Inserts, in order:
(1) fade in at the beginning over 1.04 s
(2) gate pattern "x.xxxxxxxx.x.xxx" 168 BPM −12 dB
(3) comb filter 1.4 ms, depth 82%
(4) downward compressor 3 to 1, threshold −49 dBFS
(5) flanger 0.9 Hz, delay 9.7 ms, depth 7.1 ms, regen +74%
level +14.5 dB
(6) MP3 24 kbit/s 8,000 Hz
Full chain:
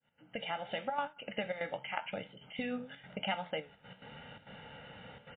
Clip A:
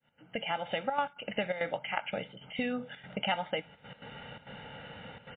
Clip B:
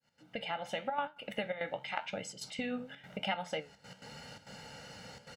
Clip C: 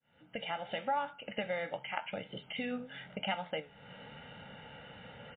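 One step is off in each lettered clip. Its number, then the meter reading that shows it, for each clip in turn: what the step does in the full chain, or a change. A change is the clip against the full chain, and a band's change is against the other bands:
5, change in integrated loudness +4.5 LU
6, change in momentary loudness spread −1 LU
2, change in integrated loudness +1.0 LU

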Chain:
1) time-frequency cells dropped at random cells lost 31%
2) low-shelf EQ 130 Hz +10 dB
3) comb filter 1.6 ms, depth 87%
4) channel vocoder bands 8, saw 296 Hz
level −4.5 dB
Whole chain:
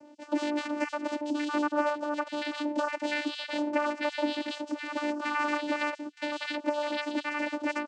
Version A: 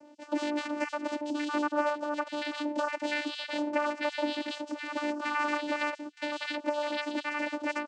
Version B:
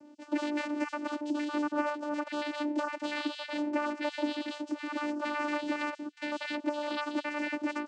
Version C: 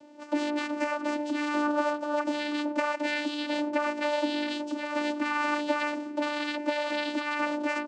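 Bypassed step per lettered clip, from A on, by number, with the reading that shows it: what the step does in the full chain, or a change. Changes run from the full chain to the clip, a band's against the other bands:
2, 250 Hz band −1.5 dB
3, 250 Hz band +2.5 dB
1, change in momentary loudness spread −1 LU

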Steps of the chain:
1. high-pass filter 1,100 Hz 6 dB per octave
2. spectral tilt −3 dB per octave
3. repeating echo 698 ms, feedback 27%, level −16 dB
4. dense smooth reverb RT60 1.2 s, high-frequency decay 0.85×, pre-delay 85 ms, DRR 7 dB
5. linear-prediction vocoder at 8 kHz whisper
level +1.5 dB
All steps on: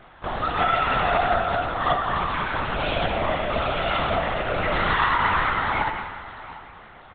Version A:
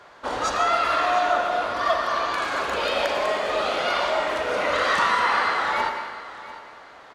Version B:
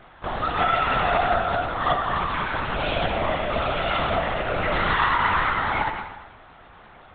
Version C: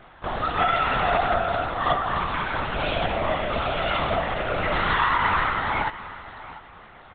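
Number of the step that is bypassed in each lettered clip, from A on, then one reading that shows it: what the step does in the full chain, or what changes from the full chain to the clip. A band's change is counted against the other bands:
5, 125 Hz band −16.0 dB
3, change in momentary loudness spread −6 LU
4, change in momentary loudness spread +2 LU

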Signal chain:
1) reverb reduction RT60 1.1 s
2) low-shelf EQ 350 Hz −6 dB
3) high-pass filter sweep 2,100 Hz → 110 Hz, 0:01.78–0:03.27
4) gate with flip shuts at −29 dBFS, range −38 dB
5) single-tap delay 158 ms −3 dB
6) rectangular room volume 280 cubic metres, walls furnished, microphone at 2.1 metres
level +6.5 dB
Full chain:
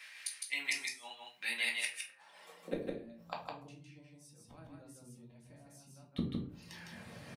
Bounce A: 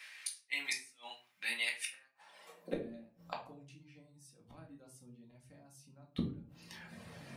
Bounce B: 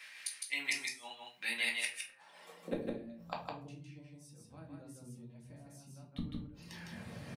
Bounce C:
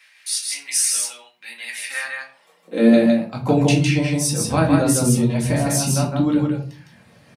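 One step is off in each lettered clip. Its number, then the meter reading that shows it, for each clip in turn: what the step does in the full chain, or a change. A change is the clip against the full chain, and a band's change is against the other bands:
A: 5, change in integrated loudness −1.5 LU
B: 2, change in momentary loudness spread −3 LU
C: 4, change in momentary loudness spread −8 LU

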